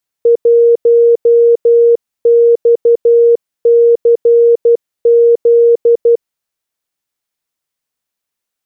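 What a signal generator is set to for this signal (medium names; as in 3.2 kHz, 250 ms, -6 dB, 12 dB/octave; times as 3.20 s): Morse "1XCZ" 12 wpm 469 Hz -4 dBFS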